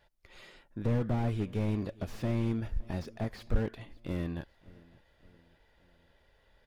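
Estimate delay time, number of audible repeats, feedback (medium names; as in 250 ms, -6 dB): 571 ms, 3, 52%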